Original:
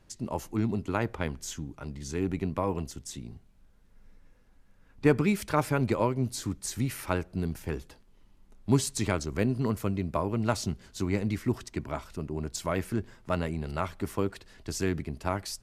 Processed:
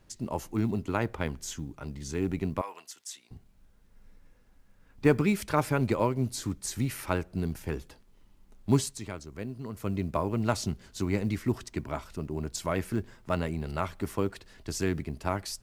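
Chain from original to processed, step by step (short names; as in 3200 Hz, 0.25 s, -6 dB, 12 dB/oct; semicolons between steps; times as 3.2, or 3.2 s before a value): 2.61–3.31 HPF 1200 Hz 12 dB/oct; 8.77–9.95 dip -10.5 dB, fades 0.23 s; companded quantiser 8-bit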